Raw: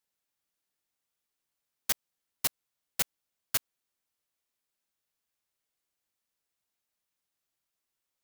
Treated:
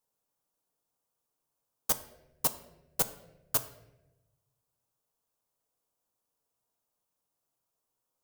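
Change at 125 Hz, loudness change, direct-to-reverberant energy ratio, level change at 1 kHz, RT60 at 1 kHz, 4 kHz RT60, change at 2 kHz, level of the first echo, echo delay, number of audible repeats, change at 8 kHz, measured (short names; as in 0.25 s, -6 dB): +5.5 dB, +1.0 dB, 9.0 dB, +5.0 dB, 0.80 s, 0.65 s, -5.5 dB, none, none, none, +0.5 dB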